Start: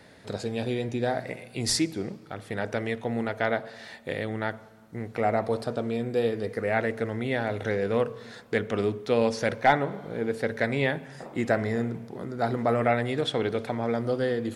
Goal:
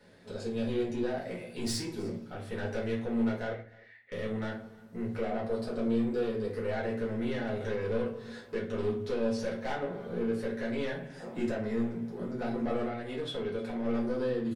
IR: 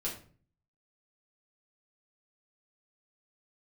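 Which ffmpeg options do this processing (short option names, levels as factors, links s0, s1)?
-filter_complex "[0:a]dynaudnorm=f=250:g=5:m=1.58,alimiter=limit=0.211:level=0:latency=1:release=352,asettb=1/sr,asplit=3[s0][s1][s2];[s0]atrim=end=12.824[s3];[s1]atrim=start=12.82:end=13.84,asetpts=PTS-STARTPTS,afade=t=in:d=0.004:c=qsin,afade=t=out:st=1.016:d=0.004:c=qsin,acompressor=threshold=0.0562:ratio=6[s4];[s2]atrim=start=13.836[s5];[s3][s4]acrossfade=d=0.004:c1=hsin:c2=qsin[s6];[s6][s5]acrossfade=d=0.004:c1=qsin:c2=hsin,asoftclip=type=tanh:threshold=0.0841,asettb=1/sr,asplit=3[s7][s8][s9];[s7]atrim=end=3.524[s10];[s8]atrim=start=3.52:end=4.12,asetpts=PTS-STARTPTS,afade=t=in:d=0.004:c=qsin,afade=t=out:st=0.596:d=0.004:c=qsin,bandpass=f=2000:t=q:w=7.7:csg=0[s11];[s9]atrim=start=4.116[s12];[s10][s11]acrossfade=d=0.004:c1=hsin:c2=qsin[s13];[s13][s12]acrossfade=d=0.004:c1=qsin:c2=hsin,aecho=1:1:302:0.0668[s14];[1:a]atrim=start_sample=2205,asetrate=48510,aresample=44100[s15];[s14][s15]afir=irnorm=-1:irlink=0,volume=0.376"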